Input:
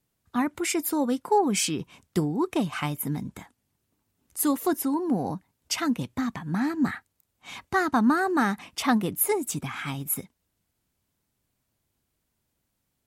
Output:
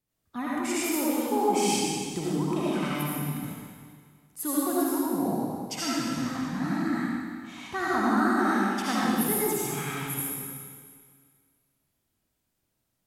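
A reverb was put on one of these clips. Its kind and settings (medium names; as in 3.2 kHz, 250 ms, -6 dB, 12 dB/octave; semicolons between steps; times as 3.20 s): algorithmic reverb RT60 1.9 s, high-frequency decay 1×, pre-delay 35 ms, DRR -8 dB; trim -9 dB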